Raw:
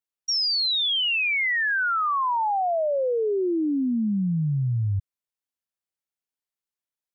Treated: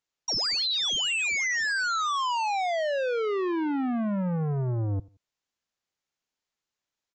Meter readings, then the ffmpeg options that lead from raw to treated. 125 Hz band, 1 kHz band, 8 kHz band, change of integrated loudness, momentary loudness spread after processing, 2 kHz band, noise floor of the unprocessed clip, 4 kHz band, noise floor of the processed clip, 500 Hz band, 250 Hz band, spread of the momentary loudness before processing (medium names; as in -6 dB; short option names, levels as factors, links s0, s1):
-4.0 dB, -3.5 dB, no reading, -3.5 dB, 5 LU, -3.5 dB, under -85 dBFS, -3.5 dB, under -85 dBFS, -3.5 dB, -4.0 dB, 5 LU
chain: -filter_complex "[0:a]aresample=16000,asoftclip=type=tanh:threshold=0.02,aresample=44100,asplit=2[s0][s1];[s1]adelay=86,lowpass=f=2300:p=1,volume=0.075,asplit=2[s2][s3];[s3]adelay=86,lowpass=f=2300:p=1,volume=0.29[s4];[s0][s2][s4]amix=inputs=3:normalize=0,volume=2.37"